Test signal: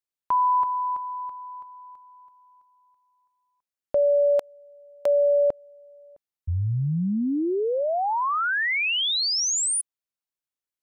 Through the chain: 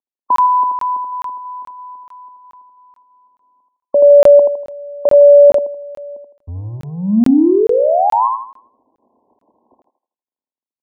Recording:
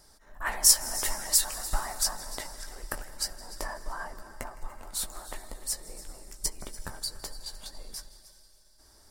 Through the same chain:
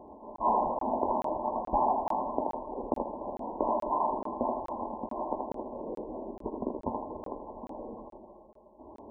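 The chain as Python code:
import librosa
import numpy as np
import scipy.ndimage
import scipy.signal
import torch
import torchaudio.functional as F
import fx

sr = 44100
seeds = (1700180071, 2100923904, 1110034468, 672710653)

p1 = fx.law_mismatch(x, sr, coded='mu')
p2 = scipy.signal.sosfilt(scipy.signal.butter(2, 78.0, 'highpass', fs=sr, output='sos'), p1)
p3 = fx.low_shelf_res(p2, sr, hz=190.0, db=-7.0, q=3.0)
p4 = 10.0 ** (-16.5 / 20.0) * (np.abs((p3 / 10.0 ** (-16.5 / 20.0) + 3.0) % 4.0 - 2.0) - 1.0)
p5 = p3 + (p4 * 10.0 ** (-6.5 / 20.0))
p6 = fx.brickwall_lowpass(p5, sr, high_hz=1100.0)
p7 = p6 + fx.echo_thinned(p6, sr, ms=80, feedback_pct=39, hz=310.0, wet_db=-3.0, dry=0)
p8 = fx.buffer_crackle(p7, sr, first_s=0.36, period_s=0.43, block=1024, kind='zero')
y = p8 * 10.0 ** (5.5 / 20.0)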